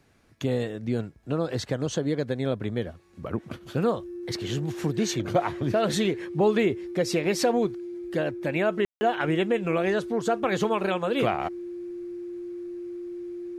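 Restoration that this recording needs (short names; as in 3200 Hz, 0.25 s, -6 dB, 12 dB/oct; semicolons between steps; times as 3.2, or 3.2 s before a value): notch 350 Hz, Q 30; room tone fill 8.85–9.01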